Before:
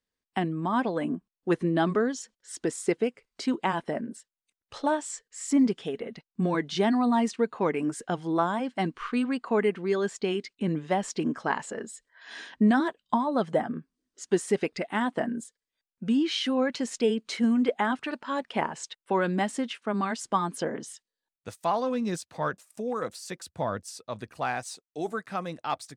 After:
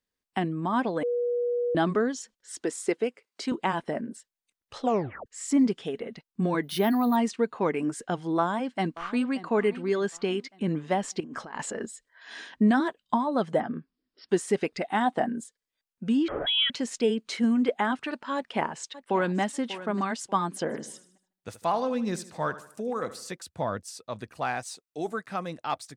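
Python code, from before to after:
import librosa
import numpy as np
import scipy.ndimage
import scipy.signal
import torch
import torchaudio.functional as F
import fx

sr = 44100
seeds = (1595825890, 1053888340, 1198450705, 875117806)

y = fx.highpass(x, sr, hz=260.0, slope=12, at=(2.61, 3.52))
y = fx.resample_bad(y, sr, factor=3, down='filtered', up='hold', at=(6.63, 7.16))
y = fx.echo_throw(y, sr, start_s=8.38, length_s=0.93, ms=580, feedback_pct=45, wet_db=-16.5)
y = fx.over_compress(y, sr, threshold_db=-37.0, ratio=-1.0, at=(11.2, 11.86))
y = fx.brickwall_lowpass(y, sr, high_hz=5600.0, at=(13.6, 14.29))
y = fx.small_body(y, sr, hz=(770.0, 3700.0), ring_ms=45, db=13, at=(14.8, 15.27))
y = fx.freq_invert(y, sr, carrier_hz=3600, at=(16.28, 16.7))
y = fx.echo_throw(y, sr, start_s=18.35, length_s=1.05, ms=590, feedback_pct=25, wet_db=-14.5)
y = fx.echo_feedback(y, sr, ms=76, feedback_pct=43, wet_db=-14.5, at=(20.69, 23.3), fade=0.02)
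y = fx.edit(y, sr, fx.bleep(start_s=1.03, length_s=0.72, hz=483.0, db=-24.0),
    fx.tape_stop(start_s=4.81, length_s=0.45), tone=tone)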